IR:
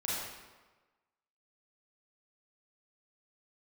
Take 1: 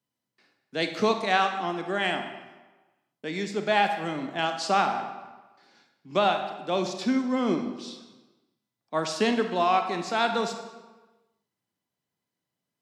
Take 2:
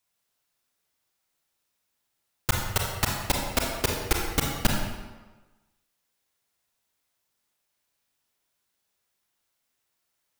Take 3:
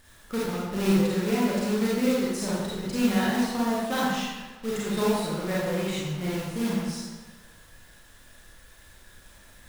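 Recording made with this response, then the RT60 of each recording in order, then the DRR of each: 3; 1.3, 1.3, 1.3 seconds; 6.0, −0.5, −7.5 decibels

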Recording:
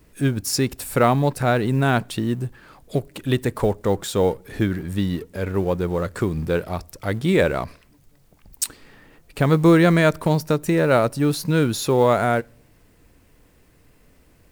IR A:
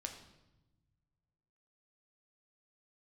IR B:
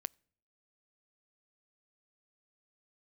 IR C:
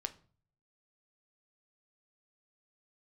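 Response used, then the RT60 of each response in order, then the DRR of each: B; 1.0, 0.60, 0.45 seconds; 3.0, 24.5, 8.5 decibels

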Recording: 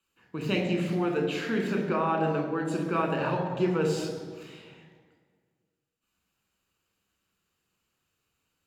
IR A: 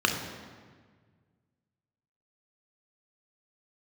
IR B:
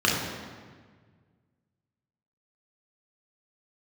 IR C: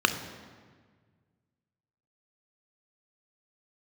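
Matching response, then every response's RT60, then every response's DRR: A; 1.6, 1.6, 1.6 seconds; 2.5, −4.0, 7.5 decibels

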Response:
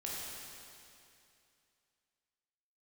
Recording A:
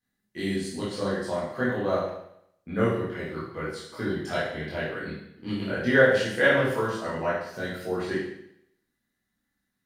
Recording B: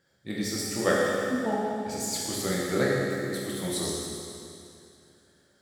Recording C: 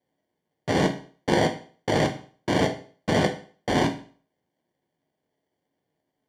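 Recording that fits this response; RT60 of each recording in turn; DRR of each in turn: B; 0.75, 2.6, 0.45 seconds; −8.5, −5.5, 4.0 decibels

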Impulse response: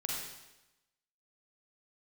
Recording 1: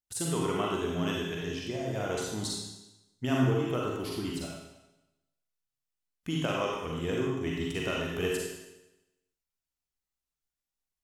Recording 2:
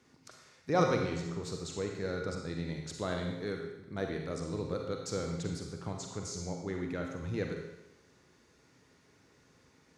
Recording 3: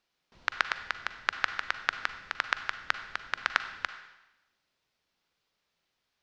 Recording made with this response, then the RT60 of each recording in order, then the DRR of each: 1; 0.95, 0.95, 1.0 seconds; −3.0, 2.0, 9.5 decibels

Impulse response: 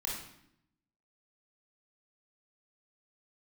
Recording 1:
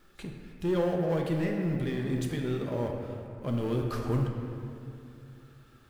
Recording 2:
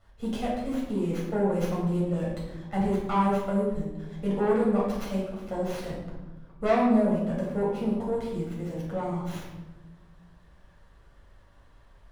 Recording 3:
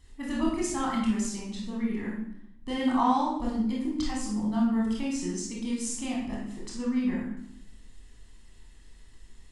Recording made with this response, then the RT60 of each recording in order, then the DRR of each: 3; 2.6, 1.1, 0.75 seconds; 1.0, −5.5, −4.0 decibels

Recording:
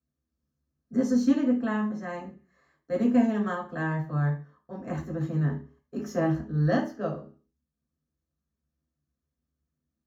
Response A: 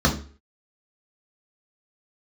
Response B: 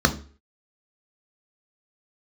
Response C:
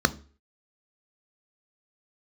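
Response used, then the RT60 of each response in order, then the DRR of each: A; 0.40, 0.40, 0.40 seconds; −2.0, 5.5, 12.5 decibels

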